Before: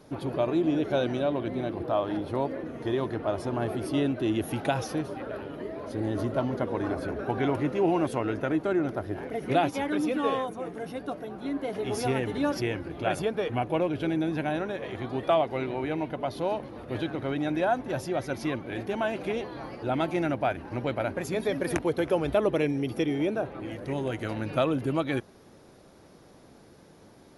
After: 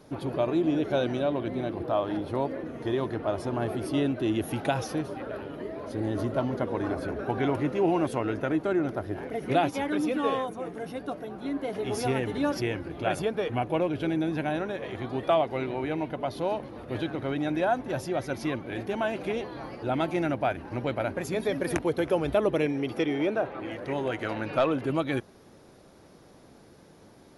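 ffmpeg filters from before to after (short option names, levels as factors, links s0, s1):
-filter_complex "[0:a]asettb=1/sr,asplit=3[s0][s1][s2];[s0]atrim=end=22.664[s3];[s1]atrim=start=22.66:end=24.9,asetpts=PTS-STARTPTS,afade=t=in:d=0.004:c=qsin,afade=t=out:st=2.236:d=0.004:c=qsin,asplit=2[s4][s5];[s5]highpass=f=720:p=1,volume=3.55,asoftclip=type=tanh:threshold=0.224[s6];[s4][s6]amix=inputs=2:normalize=0,lowpass=f=2400:p=1,volume=0.501[s7];[s2]atrim=start=24.896[s8];[s3][s7]acrossfade=d=0.004:c1=hsin:c2=qsin[s9];[s9][s8]acrossfade=d=0.004:c1=qsin:c2=hsin"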